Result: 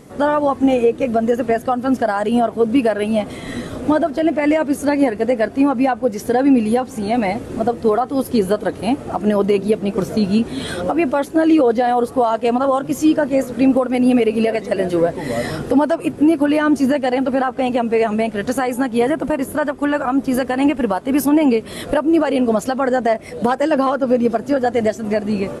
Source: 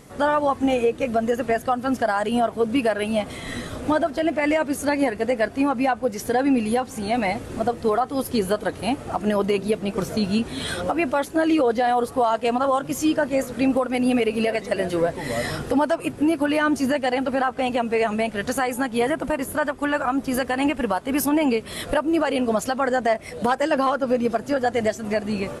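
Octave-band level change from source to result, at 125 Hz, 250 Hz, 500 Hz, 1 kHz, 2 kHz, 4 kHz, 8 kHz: +4.5, +7.0, +5.0, +3.0, +1.0, +0.5, 0.0 decibels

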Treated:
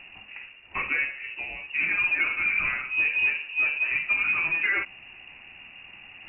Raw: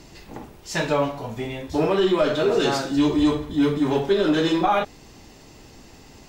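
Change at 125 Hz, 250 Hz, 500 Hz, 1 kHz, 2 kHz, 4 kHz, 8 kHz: below −20 dB, −28.0 dB, −27.5 dB, −13.5 dB, +10.0 dB, −10.0 dB, below −40 dB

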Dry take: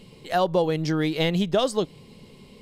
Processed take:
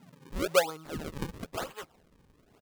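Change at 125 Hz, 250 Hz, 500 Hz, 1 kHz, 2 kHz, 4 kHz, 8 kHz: −14.5, −14.5, −8.5, −9.0, −4.5, −9.0, +0.5 decibels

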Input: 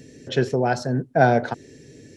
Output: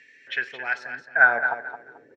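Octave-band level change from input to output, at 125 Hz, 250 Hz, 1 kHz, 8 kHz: below −30 dB, below −20 dB, −5.0 dB, below −15 dB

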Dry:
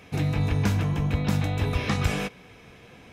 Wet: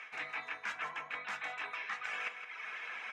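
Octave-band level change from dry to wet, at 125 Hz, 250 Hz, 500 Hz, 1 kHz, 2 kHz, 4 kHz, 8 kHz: below −40 dB, −35.5 dB, −19.5 dB, −7.0 dB, −2.0 dB, −11.0 dB, −16.5 dB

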